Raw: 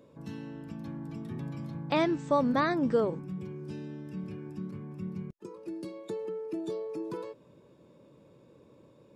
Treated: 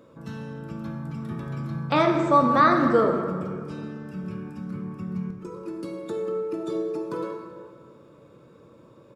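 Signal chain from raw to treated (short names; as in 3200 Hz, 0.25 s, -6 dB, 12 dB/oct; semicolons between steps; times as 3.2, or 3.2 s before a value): bell 1300 Hz +11 dB 0.4 oct; speakerphone echo 0.19 s, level -19 dB; plate-style reverb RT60 1.9 s, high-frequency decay 0.55×, DRR 2 dB; gain +3.5 dB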